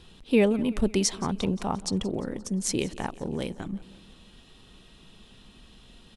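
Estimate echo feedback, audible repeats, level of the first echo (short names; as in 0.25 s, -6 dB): 57%, 4, -19.5 dB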